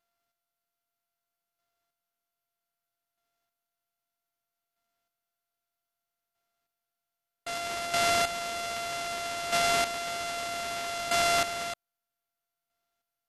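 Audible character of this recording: a buzz of ramps at a fixed pitch in blocks of 64 samples; chopped level 0.63 Hz, depth 65%, duty 20%; aliases and images of a low sample rate 10000 Hz, jitter 20%; MP2

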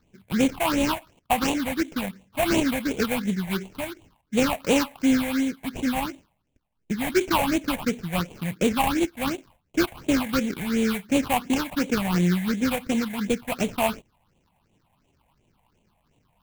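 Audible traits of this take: aliases and images of a low sample rate 1900 Hz, jitter 20%; phasing stages 6, 2.8 Hz, lowest notch 340–1400 Hz

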